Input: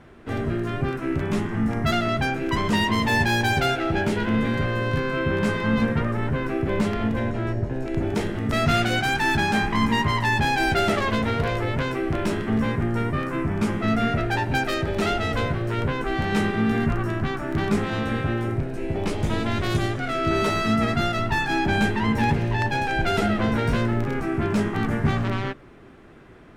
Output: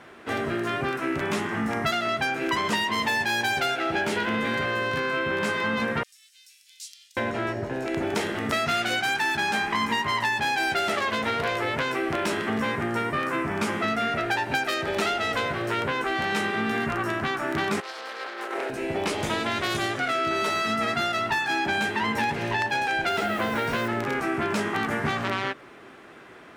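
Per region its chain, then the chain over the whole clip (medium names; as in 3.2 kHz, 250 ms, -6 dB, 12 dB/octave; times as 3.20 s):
6.03–7.17 s: inverse Chebyshev high-pass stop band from 850 Hz, stop band 80 dB + treble shelf 11 kHz -6.5 dB
17.80–18.70 s: self-modulated delay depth 0.23 ms + high-pass 400 Hz 24 dB/octave + compressor with a negative ratio -36 dBFS, ratio -0.5
23.09–23.88 s: treble shelf 6.3 kHz -8.5 dB + word length cut 8-bit, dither none
whole clip: high-pass 730 Hz 6 dB/octave; compression, threshold -29 dBFS; trim +7 dB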